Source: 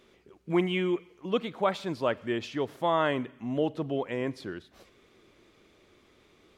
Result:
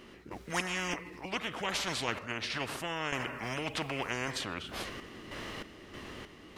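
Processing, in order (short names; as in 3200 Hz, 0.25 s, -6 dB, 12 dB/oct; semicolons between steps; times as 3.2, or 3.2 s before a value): random-step tremolo 3.2 Hz, depth 80%; formant shift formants -3 st; spectral compressor 4:1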